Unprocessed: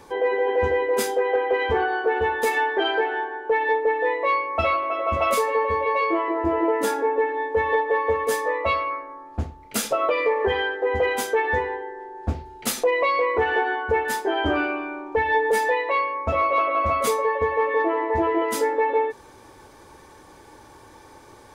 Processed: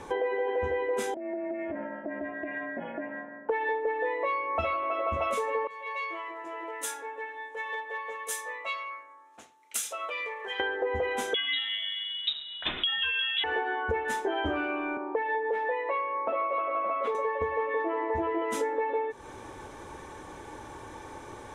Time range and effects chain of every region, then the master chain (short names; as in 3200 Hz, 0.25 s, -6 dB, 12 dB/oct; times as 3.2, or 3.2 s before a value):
1.14–3.49 vocal tract filter e + compressor 12:1, threshold -31 dBFS + ring modulator 160 Hz
5.67–10.6 HPF 180 Hz + differentiator
11.34–13.44 thinning echo 0.12 s, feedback 75%, high-pass 650 Hz, level -20 dB + inverted band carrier 3800 Hz
14.97–17.15 HPF 310 Hz 24 dB/oct + air absorption 390 m + mismatched tape noise reduction decoder only
whole clip: LPF 8600 Hz 12 dB/oct; bell 4700 Hz -11.5 dB 0.31 oct; compressor 5:1, threshold -32 dBFS; gain +4 dB